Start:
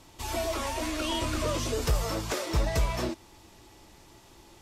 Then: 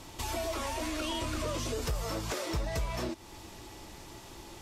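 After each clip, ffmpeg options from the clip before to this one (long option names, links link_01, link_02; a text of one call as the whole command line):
ffmpeg -i in.wav -filter_complex "[0:a]asplit=2[link_01][link_02];[link_02]alimiter=level_in=4dB:limit=-24dB:level=0:latency=1:release=141,volume=-4dB,volume=0dB[link_03];[link_01][link_03]amix=inputs=2:normalize=0,acompressor=threshold=-37dB:ratio=2" out.wav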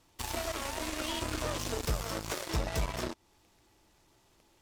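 ffmpeg -i in.wav -af "aeval=exprs='0.0891*(cos(1*acos(clip(val(0)/0.0891,-1,1)))-cos(1*PI/2))+0.00708*(cos(5*acos(clip(val(0)/0.0891,-1,1)))-cos(5*PI/2))+0.02*(cos(7*acos(clip(val(0)/0.0891,-1,1)))-cos(7*PI/2))':channel_layout=same" out.wav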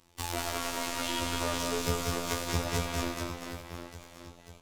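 ffmpeg -i in.wav -af "afftfilt=real='hypot(re,im)*cos(PI*b)':imag='0':win_size=2048:overlap=0.75,aecho=1:1:190|437|758.1|1176|1718:0.631|0.398|0.251|0.158|0.1,volume=5dB" out.wav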